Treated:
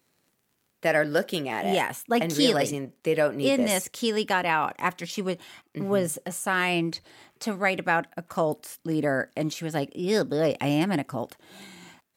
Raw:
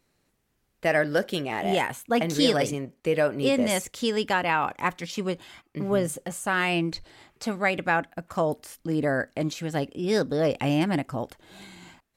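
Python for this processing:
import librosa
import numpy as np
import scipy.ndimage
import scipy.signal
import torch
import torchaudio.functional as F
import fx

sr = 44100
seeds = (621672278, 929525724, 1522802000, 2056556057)

y = scipy.signal.sosfilt(scipy.signal.butter(2, 120.0, 'highpass', fs=sr, output='sos'), x)
y = fx.high_shelf(y, sr, hz=12000.0, db=9.0)
y = fx.dmg_crackle(y, sr, seeds[0], per_s=38.0, level_db=-51.0)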